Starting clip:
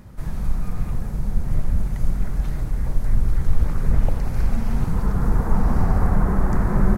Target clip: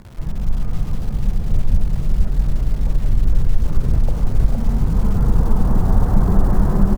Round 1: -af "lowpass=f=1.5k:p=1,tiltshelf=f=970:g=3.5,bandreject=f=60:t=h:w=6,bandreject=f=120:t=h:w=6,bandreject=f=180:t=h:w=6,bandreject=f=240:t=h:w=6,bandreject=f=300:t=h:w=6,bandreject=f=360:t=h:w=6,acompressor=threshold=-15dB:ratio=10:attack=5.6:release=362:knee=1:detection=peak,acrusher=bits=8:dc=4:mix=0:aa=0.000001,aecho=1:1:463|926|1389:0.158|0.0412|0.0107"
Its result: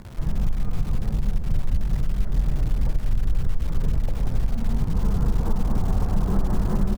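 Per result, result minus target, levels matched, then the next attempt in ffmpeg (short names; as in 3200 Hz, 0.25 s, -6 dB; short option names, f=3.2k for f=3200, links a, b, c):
echo-to-direct -11.5 dB; compressor: peak gain reduction +6.5 dB
-af "lowpass=f=1.5k:p=1,tiltshelf=f=970:g=3.5,bandreject=f=60:t=h:w=6,bandreject=f=120:t=h:w=6,bandreject=f=180:t=h:w=6,bandreject=f=240:t=h:w=6,bandreject=f=300:t=h:w=6,bandreject=f=360:t=h:w=6,acompressor=threshold=-15dB:ratio=10:attack=5.6:release=362:knee=1:detection=peak,acrusher=bits=8:dc=4:mix=0:aa=0.000001,aecho=1:1:463|926|1389|1852:0.596|0.155|0.0403|0.0105"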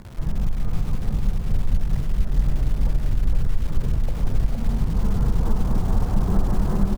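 compressor: peak gain reduction +6.5 dB
-af "lowpass=f=1.5k:p=1,tiltshelf=f=970:g=3.5,bandreject=f=60:t=h:w=6,bandreject=f=120:t=h:w=6,bandreject=f=180:t=h:w=6,bandreject=f=240:t=h:w=6,bandreject=f=300:t=h:w=6,bandreject=f=360:t=h:w=6,acompressor=threshold=-8dB:ratio=10:attack=5.6:release=362:knee=1:detection=peak,acrusher=bits=8:dc=4:mix=0:aa=0.000001,aecho=1:1:463|926|1389|1852:0.596|0.155|0.0403|0.0105"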